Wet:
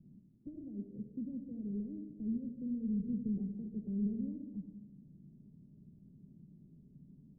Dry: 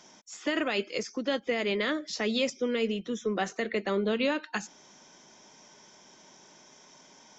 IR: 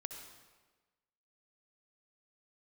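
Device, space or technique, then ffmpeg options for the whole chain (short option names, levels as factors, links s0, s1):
club heard from the street: -filter_complex "[0:a]alimiter=level_in=1.58:limit=0.0631:level=0:latency=1:release=491,volume=0.631,lowpass=f=180:w=0.5412,lowpass=f=180:w=1.3066[s0];[1:a]atrim=start_sample=2205[s1];[s0][s1]afir=irnorm=-1:irlink=0,volume=6.68"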